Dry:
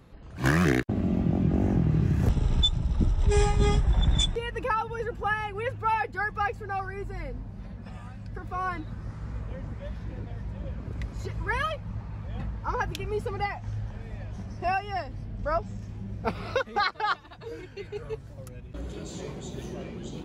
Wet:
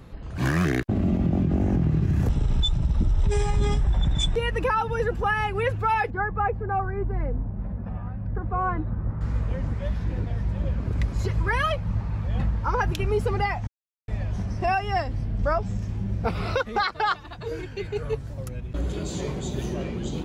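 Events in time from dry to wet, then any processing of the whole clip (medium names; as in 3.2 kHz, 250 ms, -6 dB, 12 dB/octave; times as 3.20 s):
6.10–9.21 s: low-pass 1.2 kHz
13.67–14.08 s: mute
whole clip: bass shelf 110 Hz +4.5 dB; compression 3:1, threshold -23 dBFS; peak limiter -21 dBFS; trim +6.5 dB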